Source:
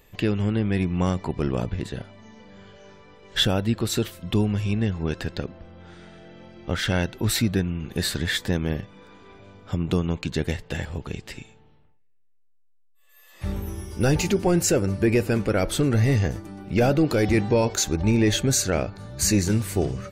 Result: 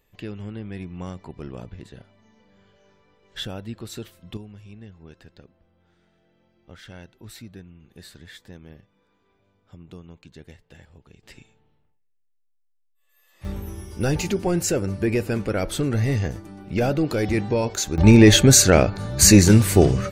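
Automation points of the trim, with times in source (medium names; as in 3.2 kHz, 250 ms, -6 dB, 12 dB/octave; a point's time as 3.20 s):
-11 dB
from 4.37 s -19 dB
from 11.23 s -8.5 dB
from 13.45 s -2 dB
from 17.98 s +9 dB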